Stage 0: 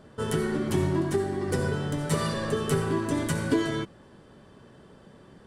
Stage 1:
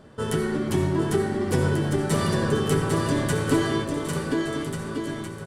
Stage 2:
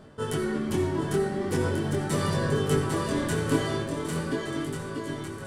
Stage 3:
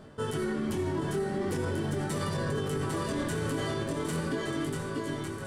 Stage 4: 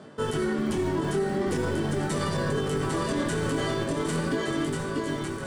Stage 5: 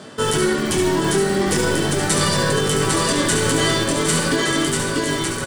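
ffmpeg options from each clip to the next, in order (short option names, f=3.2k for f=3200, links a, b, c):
-af "aecho=1:1:800|1440|1952|2362|2689:0.631|0.398|0.251|0.158|0.1,volume=2dB"
-af "areverse,acompressor=mode=upward:threshold=-28dB:ratio=2.5,areverse,flanger=delay=20:depth=5.8:speed=0.4"
-af "alimiter=limit=-23dB:level=0:latency=1:release=44"
-filter_complex "[0:a]lowpass=f=10k:w=0.5412,lowpass=f=10k:w=1.3066,acrossover=split=120|2400[a][b][c];[a]acrusher=bits=5:dc=4:mix=0:aa=0.000001[d];[d][b][c]amix=inputs=3:normalize=0,volume=4.5dB"
-filter_complex "[0:a]highshelf=f=2.3k:g=12,asplit=2[a][b];[b]aecho=0:1:71:0.447[c];[a][c]amix=inputs=2:normalize=0,volume=6.5dB"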